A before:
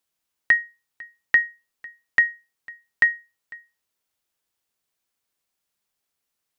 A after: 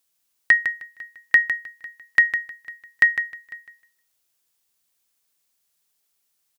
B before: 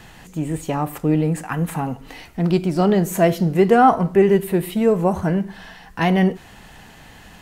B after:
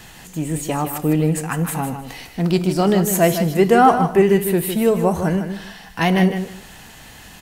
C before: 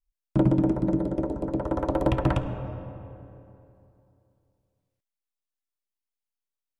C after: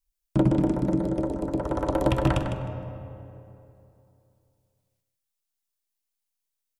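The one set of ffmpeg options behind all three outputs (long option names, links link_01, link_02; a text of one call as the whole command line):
ffmpeg -i in.wav -af "highshelf=frequency=3600:gain=9.5,aecho=1:1:155|310|465:0.355|0.0674|0.0128" out.wav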